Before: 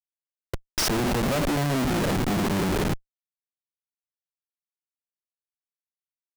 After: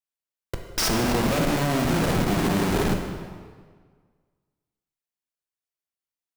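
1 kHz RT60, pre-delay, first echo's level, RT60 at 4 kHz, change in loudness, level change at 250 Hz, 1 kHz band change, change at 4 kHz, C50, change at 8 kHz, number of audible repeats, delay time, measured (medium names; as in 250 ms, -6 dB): 1.6 s, 10 ms, no echo, 1.3 s, +1.5 dB, +1.5 dB, +2.0 dB, +1.5 dB, 5.0 dB, +1.5 dB, no echo, no echo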